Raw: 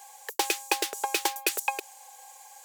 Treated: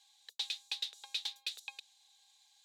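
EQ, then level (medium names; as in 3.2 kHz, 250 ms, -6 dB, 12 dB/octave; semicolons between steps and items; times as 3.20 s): band-pass filter 3.8 kHz, Q 8.6; +2.5 dB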